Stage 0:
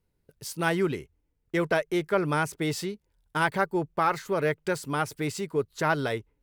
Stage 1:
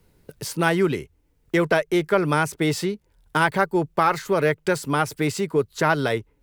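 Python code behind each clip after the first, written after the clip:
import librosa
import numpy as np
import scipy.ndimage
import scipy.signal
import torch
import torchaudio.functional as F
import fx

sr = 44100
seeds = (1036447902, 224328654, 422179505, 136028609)

y = fx.band_squash(x, sr, depth_pct=40)
y = y * librosa.db_to_amplitude(5.5)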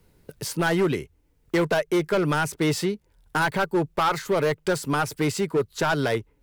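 y = np.clip(10.0 ** (17.0 / 20.0) * x, -1.0, 1.0) / 10.0 ** (17.0 / 20.0)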